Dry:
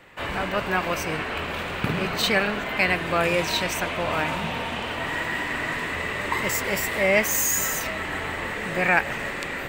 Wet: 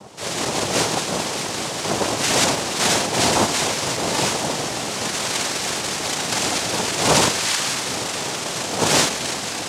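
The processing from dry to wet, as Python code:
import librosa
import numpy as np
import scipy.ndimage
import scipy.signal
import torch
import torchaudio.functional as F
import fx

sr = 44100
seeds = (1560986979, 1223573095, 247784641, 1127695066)

y = x + 10.0 ** (-42.0 / 20.0) * np.sin(2.0 * np.pi * 490.0 * np.arange(len(x)) / sr)
y = fx.rev_schroeder(y, sr, rt60_s=0.38, comb_ms=32, drr_db=-1.5)
y = fx.noise_vocoder(y, sr, seeds[0], bands=2)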